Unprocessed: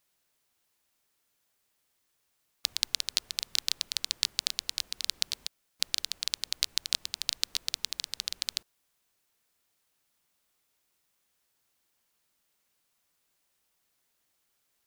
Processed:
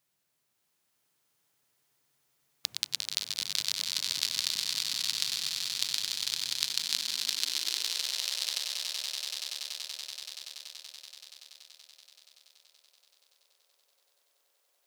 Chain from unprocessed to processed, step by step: swelling echo 95 ms, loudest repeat 8, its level -8.5 dB; high-pass sweep 130 Hz -> 520 Hz, 6.53–8.2; gain -3 dB

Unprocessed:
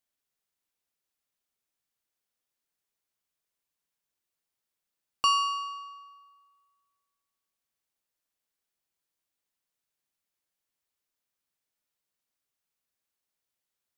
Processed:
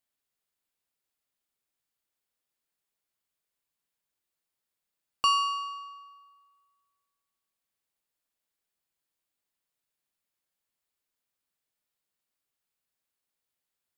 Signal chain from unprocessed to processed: bell 5900 Hz -4.5 dB 0.21 oct

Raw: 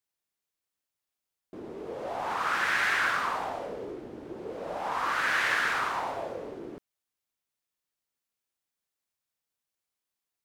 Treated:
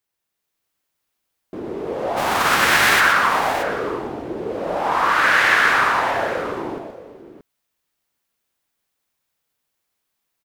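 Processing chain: 2.16–2.99 spectral whitening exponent 0.6; bell 7200 Hz -3.5 dB 1.9 oct; on a send: tapped delay 0.124/0.628 s -7/-12.5 dB; on the sum: AGC gain up to 4 dB; gain +7.5 dB

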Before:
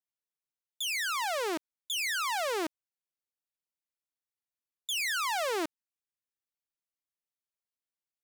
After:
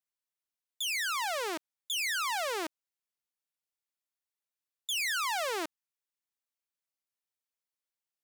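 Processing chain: low shelf 330 Hz -10.5 dB

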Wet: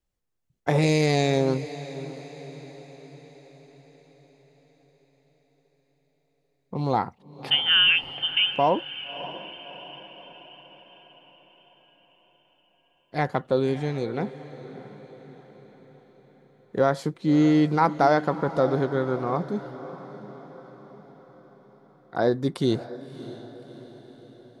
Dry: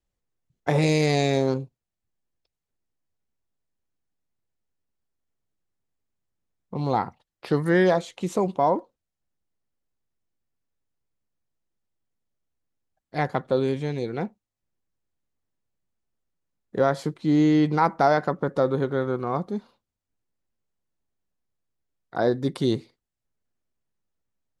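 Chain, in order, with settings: 7.5–8.54 inverted band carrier 3300 Hz; diffused feedback echo 0.613 s, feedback 53%, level -14.5 dB

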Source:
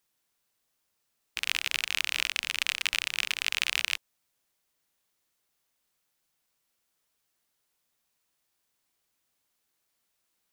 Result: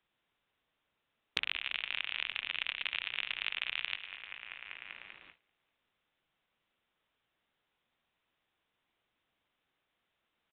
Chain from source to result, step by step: split-band echo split 2400 Hz, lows 0.195 s, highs 0.103 s, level -12.5 dB; gate with hold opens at -59 dBFS; downsampling 8000 Hz; three-band squash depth 100%; gain -7 dB

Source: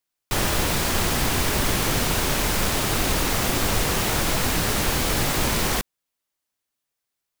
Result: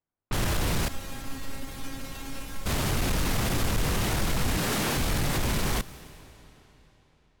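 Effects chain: 4.57–4.97 HPF 160 Hz 12 dB/oct; hard clip -22.5 dBFS, distortion -9 dB; tone controls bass +7 dB, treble -2 dB; limiter -20.5 dBFS, peak gain reduction 5 dB; low-pass opened by the level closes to 1100 Hz, open at -24.5 dBFS; 0.88–2.66 resonator 270 Hz, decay 0.21 s, harmonics all, mix 90%; on a send: high shelf 8100 Hz +6.5 dB + reverb RT60 3.9 s, pre-delay 0.11 s, DRR 17.5 dB

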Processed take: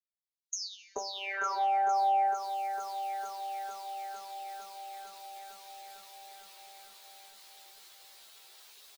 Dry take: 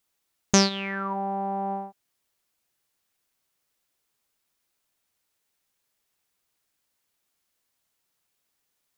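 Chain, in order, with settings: recorder AGC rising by 26 dB/s; elliptic high-pass 370 Hz, stop band 50 dB; spectral gate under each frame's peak -10 dB strong; expander -41 dBFS; bell 4000 Hz +13 dB 0.91 oct; compressor 5:1, threshold -34 dBFS, peak gain reduction 16.5 dB; doubler 14 ms -4.5 dB; bands offset in time highs, lows 0.43 s, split 4300 Hz; reverb, pre-delay 3 ms, DRR 10 dB; lo-fi delay 0.454 s, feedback 80%, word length 10-bit, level -10 dB

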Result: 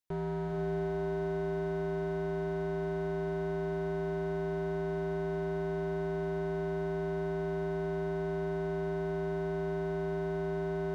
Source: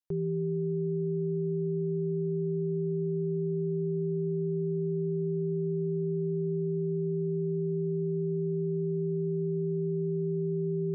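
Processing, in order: hard clip -34.5 dBFS, distortion -8 dB; diffused feedback echo 0.451 s, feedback 40%, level -4 dB; gain +2 dB

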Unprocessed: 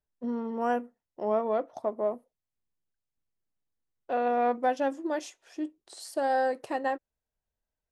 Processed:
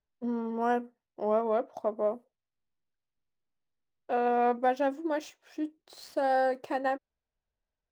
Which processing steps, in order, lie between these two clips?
median filter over 5 samples

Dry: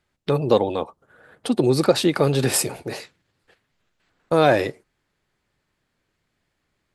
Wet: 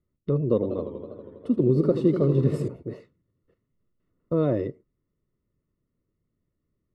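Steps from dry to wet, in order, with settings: running mean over 55 samples; 0.54–2.68 warbling echo 81 ms, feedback 80%, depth 142 cents, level -10 dB

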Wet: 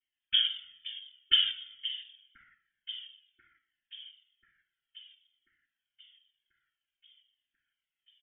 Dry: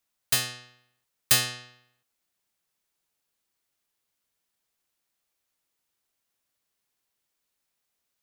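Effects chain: rattling part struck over -42 dBFS, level -12 dBFS; tilt -4.5 dB/oct; treble ducked by the level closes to 730 Hz, closed at -25.5 dBFS; comb 1.8 ms; noise vocoder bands 3; air absorption 160 m; echo with dull and thin repeats by turns 0.519 s, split 1500 Hz, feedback 76%, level -13 dB; inverted band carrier 3400 Hz; brick-wall FIR band-stop 390–1300 Hz; cascading flanger falling 0.55 Hz

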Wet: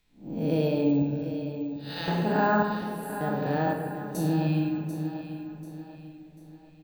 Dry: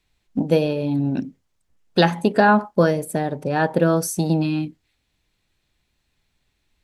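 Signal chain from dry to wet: time blur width 0.214 s; 1.02–2.08 passive tone stack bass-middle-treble 10-0-10; in parallel at +0.5 dB: compressor, threshold -35 dBFS, peak gain reduction 18.5 dB; 2.62–3.21 on the sum: inverse Chebyshev band-stop 150–1400 Hz, stop band 80 dB; 3.71–4.15 flipped gate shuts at -15 dBFS, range -37 dB; feedback echo 0.741 s, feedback 40%, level -11 dB; on a send at -2 dB: reverb RT60 1.8 s, pre-delay 5 ms; on the sum: careless resampling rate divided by 2×, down none, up hold; gain -6.5 dB

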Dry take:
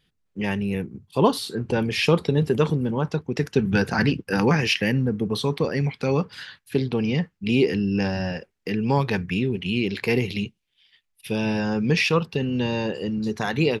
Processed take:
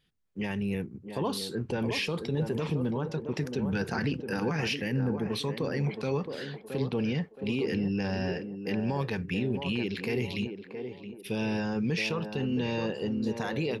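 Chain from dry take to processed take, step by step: limiter -16.5 dBFS, peak gain reduction 10.5 dB; on a send: narrowing echo 0.67 s, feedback 43%, band-pass 520 Hz, level -5 dB; on the sum: gain -5 dB

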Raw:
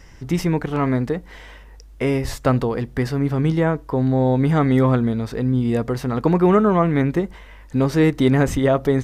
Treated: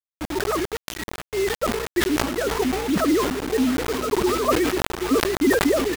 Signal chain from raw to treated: sine-wave speech; spectral noise reduction 21 dB; reverse; upward compressor, threshold -16 dBFS; reverse; echo 1.174 s -15 dB; tremolo 1.3 Hz, depth 77%; time stretch by phase-locked vocoder 0.66×; hum 60 Hz, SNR 15 dB; on a send: split-band echo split 430 Hz, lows 0.343 s, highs 0.655 s, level -14.5 dB; on the sum: bit-crush 5-bit; sustainer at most 45 dB/s

